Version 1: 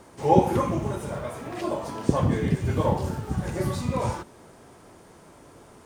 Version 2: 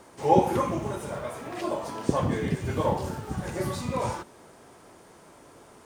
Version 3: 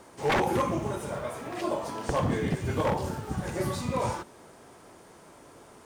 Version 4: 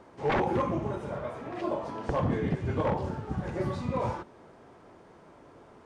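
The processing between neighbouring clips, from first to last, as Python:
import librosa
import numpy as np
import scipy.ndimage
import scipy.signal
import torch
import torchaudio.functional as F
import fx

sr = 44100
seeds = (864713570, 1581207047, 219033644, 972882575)

y1 = fx.low_shelf(x, sr, hz=220.0, db=-7.0)
y2 = 10.0 ** (-19.0 / 20.0) * (np.abs((y1 / 10.0 ** (-19.0 / 20.0) + 3.0) % 4.0 - 2.0) - 1.0)
y3 = fx.spacing_loss(y2, sr, db_at_10k=22)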